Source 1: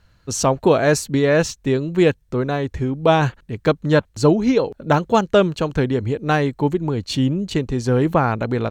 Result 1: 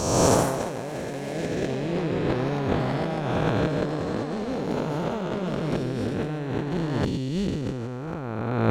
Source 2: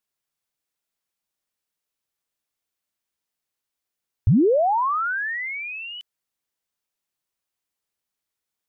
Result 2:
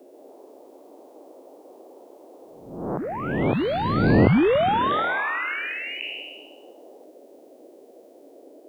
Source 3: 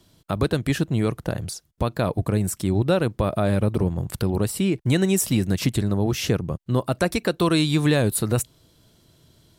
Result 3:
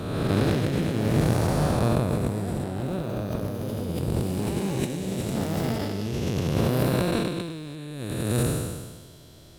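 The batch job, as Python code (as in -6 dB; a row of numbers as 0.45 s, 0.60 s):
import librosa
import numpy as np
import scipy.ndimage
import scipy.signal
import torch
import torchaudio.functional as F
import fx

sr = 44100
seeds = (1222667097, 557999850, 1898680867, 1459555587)

y = fx.spec_blur(x, sr, span_ms=643.0)
y = fx.over_compress(y, sr, threshold_db=-30.0, ratio=-0.5)
y = fx.dmg_noise_band(y, sr, seeds[0], low_hz=270.0, high_hz=640.0, level_db=-66.0)
y = fx.echo_pitch(y, sr, ms=141, semitones=4, count=2, db_per_echo=-6.0)
y = y * 10.0 ** (-26 / 20.0) / np.sqrt(np.mean(np.square(y)))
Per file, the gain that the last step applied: +5.0 dB, +17.5 dB, +4.5 dB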